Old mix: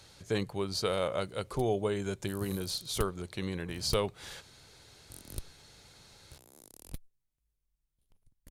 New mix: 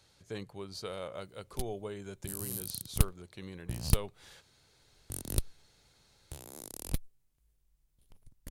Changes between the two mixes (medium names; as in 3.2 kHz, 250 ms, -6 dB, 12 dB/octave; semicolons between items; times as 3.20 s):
speech -9.5 dB; background +9.5 dB